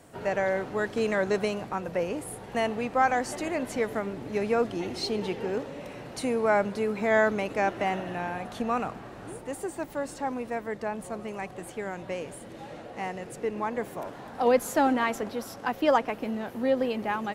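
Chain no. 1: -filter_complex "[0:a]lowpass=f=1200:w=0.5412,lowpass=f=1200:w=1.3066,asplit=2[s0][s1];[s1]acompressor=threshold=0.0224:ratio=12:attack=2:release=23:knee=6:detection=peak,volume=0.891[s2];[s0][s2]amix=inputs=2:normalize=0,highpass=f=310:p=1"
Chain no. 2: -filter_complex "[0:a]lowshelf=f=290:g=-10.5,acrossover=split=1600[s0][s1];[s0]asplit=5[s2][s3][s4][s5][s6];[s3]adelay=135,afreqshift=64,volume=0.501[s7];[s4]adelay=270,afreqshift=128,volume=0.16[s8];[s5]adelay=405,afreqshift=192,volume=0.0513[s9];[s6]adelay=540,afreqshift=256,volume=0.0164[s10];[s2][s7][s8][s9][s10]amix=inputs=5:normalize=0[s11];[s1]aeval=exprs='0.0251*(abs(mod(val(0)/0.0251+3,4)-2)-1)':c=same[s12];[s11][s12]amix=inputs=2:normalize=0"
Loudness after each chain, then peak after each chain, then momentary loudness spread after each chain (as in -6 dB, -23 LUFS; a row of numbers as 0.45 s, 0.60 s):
-29.5 LUFS, -31.0 LUFS; -11.5 dBFS, -13.0 dBFS; 11 LU, 13 LU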